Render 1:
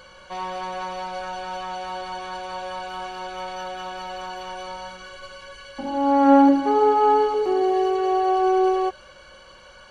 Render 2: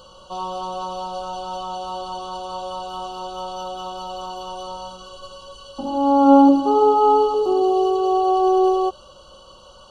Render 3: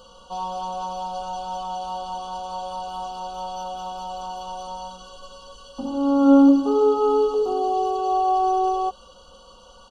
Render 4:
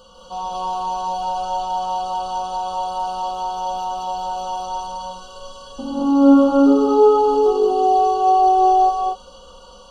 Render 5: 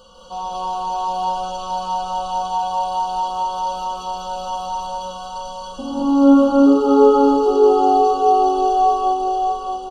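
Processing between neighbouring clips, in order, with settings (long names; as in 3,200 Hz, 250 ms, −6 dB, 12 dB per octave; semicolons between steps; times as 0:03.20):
elliptic band-stop filter 1,300–2,900 Hz, stop band 60 dB; level +3 dB
comb filter 4.2 ms, depth 67%; level −3.5 dB
reverb whose tail is shaped and stops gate 260 ms rising, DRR −3.5 dB
repeating echo 628 ms, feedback 36%, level −4.5 dB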